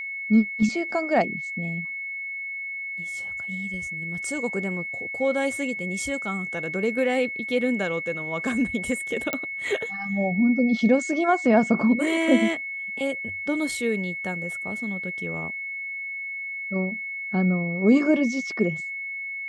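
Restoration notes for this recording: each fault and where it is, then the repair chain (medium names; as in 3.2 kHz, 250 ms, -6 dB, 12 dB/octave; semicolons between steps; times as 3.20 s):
whine 2.2 kHz -30 dBFS
9.33 s: pop -10 dBFS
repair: de-click; band-stop 2.2 kHz, Q 30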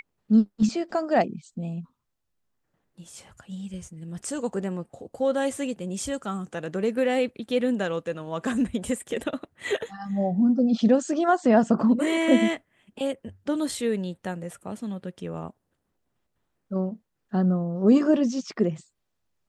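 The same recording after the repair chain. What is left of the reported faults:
nothing left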